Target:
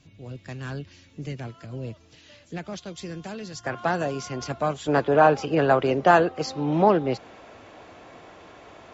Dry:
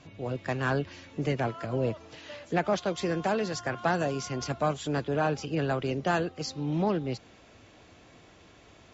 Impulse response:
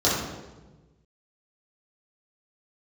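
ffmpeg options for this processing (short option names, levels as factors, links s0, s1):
-af "asetnsamples=n=441:p=0,asendcmd='3.64 equalizer g 2.5;4.88 equalizer g 12.5',equalizer=f=820:w=0.39:g=-12"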